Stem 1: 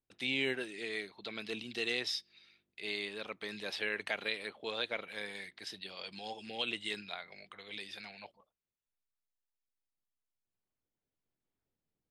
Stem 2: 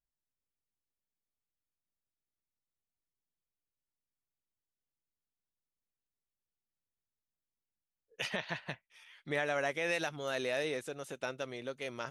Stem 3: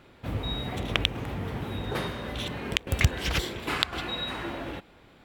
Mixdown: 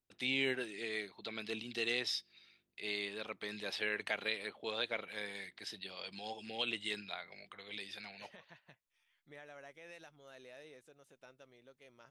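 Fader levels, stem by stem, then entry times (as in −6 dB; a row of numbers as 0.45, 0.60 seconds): −1.0 dB, −20.0 dB, muted; 0.00 s, 0.00 s, muted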